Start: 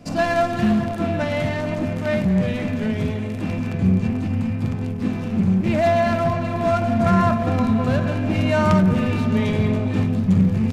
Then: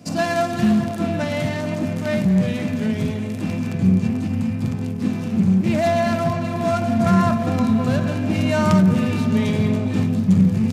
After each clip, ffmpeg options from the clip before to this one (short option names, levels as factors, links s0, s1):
-af "highpass=130,bass=f=250:g=6,treble=f=4000:g=8,volume=0.841"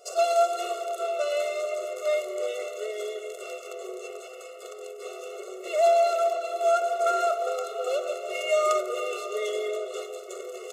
-af "superequalizer=11b=0.282:14b=0.631:15b=1.78,afftfilt=real='re*eq(mod(floor(b*sr/1024/370),2),1)':imag='im*eq(mod(floor(b*sr/1024/370),2),1)':win_size=1024:overlap=0.75"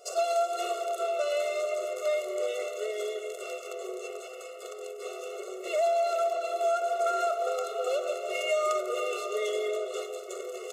-af "acompressor=threshold=0.0562:ratio=3"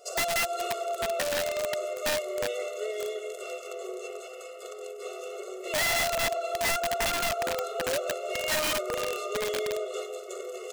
-af "aeval=exprs='(mod(13.3*val(0)+1,2)-1)/13.3':c=same"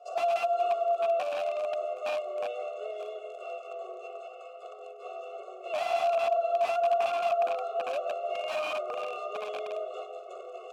-filter_complex "[0:a]asplit=3[s0][s1][s2];[s0]bandpass=f=730:t=q:w=8,volume=1[s3];[s1]bandpass=f=1090:t=q:w=8,volume=0.501[s4];[s2]bandpass=f=2440:t=q:w=8,volume=0.355[s5];[s3][s4][s5]amix=inputs=3:normalize=0,volume=2.37"